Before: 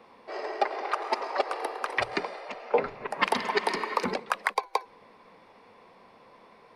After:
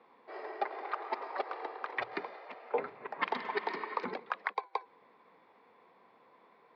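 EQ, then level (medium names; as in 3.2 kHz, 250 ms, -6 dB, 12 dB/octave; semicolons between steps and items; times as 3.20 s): cabinet simulation 180–3700 Hz, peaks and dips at 210 Hz -4 dB, 580 Hz -4 dB, 2.8 kHz -6 dB; -7.0 dB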